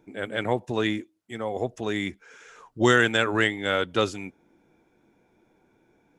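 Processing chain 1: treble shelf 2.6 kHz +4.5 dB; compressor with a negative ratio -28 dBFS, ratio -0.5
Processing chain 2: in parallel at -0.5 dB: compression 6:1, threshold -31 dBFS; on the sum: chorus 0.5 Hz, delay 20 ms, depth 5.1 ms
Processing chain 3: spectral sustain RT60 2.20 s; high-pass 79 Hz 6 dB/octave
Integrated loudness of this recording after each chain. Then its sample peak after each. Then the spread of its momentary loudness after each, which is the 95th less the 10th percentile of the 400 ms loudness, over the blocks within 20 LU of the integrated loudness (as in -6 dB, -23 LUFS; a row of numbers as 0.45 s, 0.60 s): -30.0 LUFS, -26.0 LUFS, -21.5 LUFS; -10.5 dBFS, -6.0 dBFS, -3.5 dBFS; 11 LU, 18 LU, 17 LU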